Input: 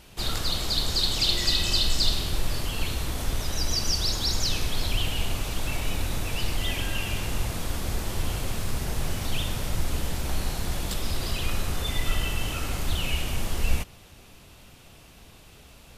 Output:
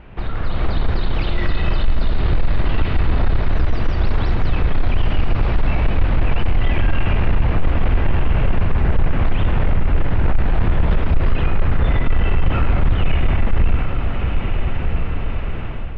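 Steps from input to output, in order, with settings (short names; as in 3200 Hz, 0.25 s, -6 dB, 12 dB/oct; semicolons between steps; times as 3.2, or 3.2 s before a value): compressor 3:1, threshold -32 dBFS, peak gain reduction 13 dB; low shelf 100 Hz +5.5 dB; diffused feedback echo 1.311 s, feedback 56%, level -6 dB; AGC gain up to 9 dB; soft clip -15.5 dBFS, distortion -15 dB; LPF 2200 Hz 24 dB/oct; gain +8.5 dB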